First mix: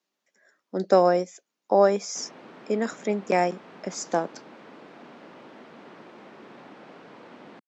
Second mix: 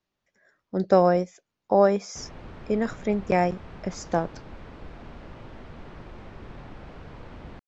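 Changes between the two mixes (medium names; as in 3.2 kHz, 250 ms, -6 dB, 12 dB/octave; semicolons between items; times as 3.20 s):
speech: add distance through air 93 m; master: remove high-pass 210 Hz 24 dB/octave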